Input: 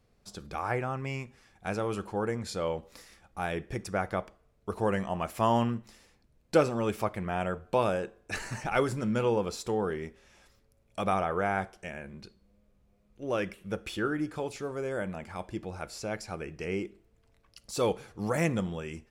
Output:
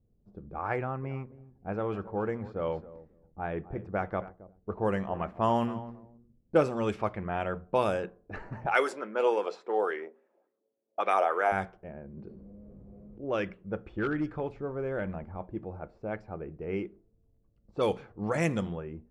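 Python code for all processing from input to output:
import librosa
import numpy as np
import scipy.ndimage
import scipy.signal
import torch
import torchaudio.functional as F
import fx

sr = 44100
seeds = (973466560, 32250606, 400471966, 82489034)

y = fx.chain(x, sr, fx.high_shelf(hz=2300.0, db=-6.5),
    fx.echo_feedback(ms=270, feedback_pct=24, wet_db=-16), at=(0.76, 6.77))
y = fx.chain(y, sr, fx.highpass(hz=340.0, slope=24),
    fx.bell_lfo(hz=3.5, low_hz=550.0, high_hz=2200.0, db=8), at=(8.66, 11.52))
y = fx.chain(y, sr, fx.highpass(hz=130.0, slope=6),
    fx.env_flatten(amount_pct=70), at=(12.17, 13.24))
y = fx.chain(y, sr, fx.low_shelf(hz=85.0, db=11.0),
    fx.clip_hard(threshold_db=-24.0), at=(13.9, 15.4))
y = fx.env_lowpass(y, sr, base_hz=300.0, full_db=-22.5)
y = fx.high_shelf(y, sr, hz=11000.0, db=-3.0)
y = fx.hum_notches(y, sr, base_hz=60, count=4)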